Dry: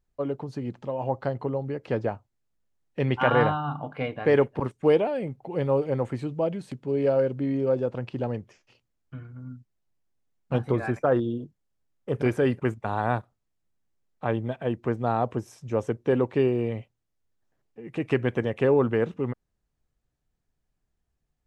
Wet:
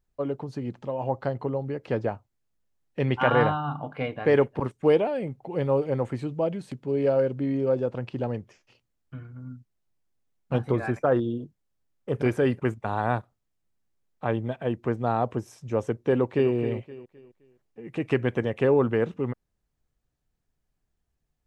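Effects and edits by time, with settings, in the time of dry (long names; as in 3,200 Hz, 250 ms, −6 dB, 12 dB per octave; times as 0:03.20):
0:16.12–0:16.53: delay throw 260 ms, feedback 35%, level −11 dB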